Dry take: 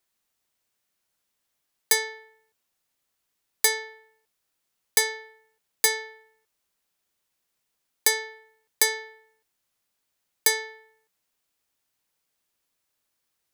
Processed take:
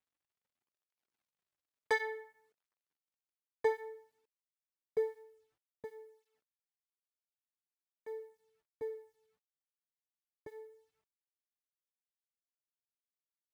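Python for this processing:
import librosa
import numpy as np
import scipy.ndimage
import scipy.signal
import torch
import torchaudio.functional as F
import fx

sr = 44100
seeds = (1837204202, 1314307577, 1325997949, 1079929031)

y = fx.filter_sweep_lowpass(x, sr, from_hz=1500.0, to_hz=250.0, start_s=2.4, end_s=5.95, q=0.77)
y = fx.dynamic_eq(y, sr, hz=450.0, q=4.2, threshold_db=-47.0, ratio=4.0, max_db=4)
y = fx.quant_companded(y, sr, bits=8)
y = fx.flanger_cancel(y, sr, hz=0.56, depth_ms=5.9)
y = y * 10.0 ** (1.0 / 20.0)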